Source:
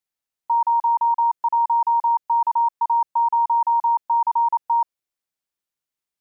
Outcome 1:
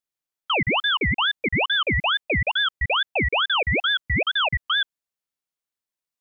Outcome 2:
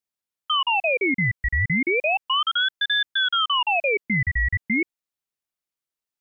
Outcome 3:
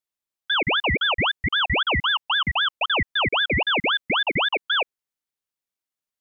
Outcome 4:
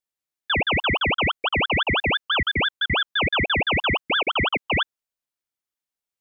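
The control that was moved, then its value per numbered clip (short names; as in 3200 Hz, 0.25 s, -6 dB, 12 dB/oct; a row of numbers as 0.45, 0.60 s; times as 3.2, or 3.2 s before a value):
ring modulator with a swept carrier, at: 2.3, 0.34, 3.8, 6 Hz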